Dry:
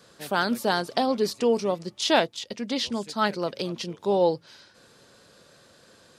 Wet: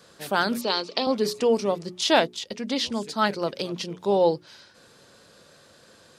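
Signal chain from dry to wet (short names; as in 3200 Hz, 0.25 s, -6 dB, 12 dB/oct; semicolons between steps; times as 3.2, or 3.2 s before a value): 0.61–1.07 speaker cabinet 310–6300 Hz, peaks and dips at 730 Hz -10 dB, 1600 Hz -10 dB, 2500 Hz +7 dB, 4300 Hz +5 dB; notches 60/120/180/240/300/360/420 Hz; gain +1.5 dB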